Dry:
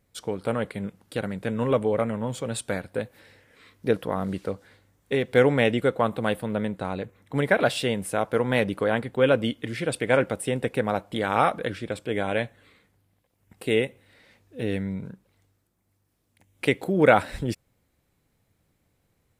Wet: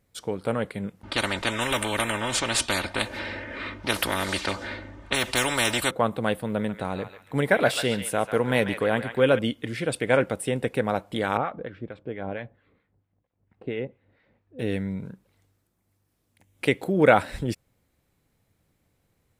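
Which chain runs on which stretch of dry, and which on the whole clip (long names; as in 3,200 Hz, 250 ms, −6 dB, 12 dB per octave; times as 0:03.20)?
0:01.03–0:05.91: low-pass that shuts in the quiet parts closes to 2,100 Hz, open at −21 dBFS + comb filter 3.3 ms, depth 78% + every bin compressed towards the loudest bin 4 to 1
0:06.45–0:09.39: high-shelf EQ 9,000 Hz +7 dB + feedback echo with a band-pass in the loop 142 ms, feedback 41%, band-pass 2,100 Hz, level −7 dB
0:11.37–0:14.59: two-band tremolo in antiphase 4.4 Hz, crossover 980 Hz + head-to-tape spacing loss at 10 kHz 40 dB
whole clip: no processing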